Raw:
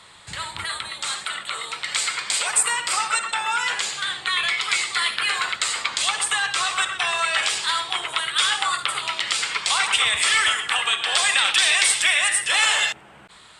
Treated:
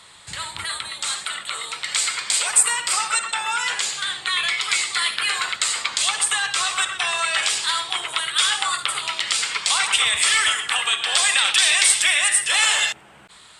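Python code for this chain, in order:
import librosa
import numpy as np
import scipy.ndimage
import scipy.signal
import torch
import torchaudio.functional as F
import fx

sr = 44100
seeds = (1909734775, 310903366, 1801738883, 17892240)

y = fx.high_shelf(x, sr, hz=4100.0, db=6.5)
y = y * librosa.db_to_amplitude(-1.5)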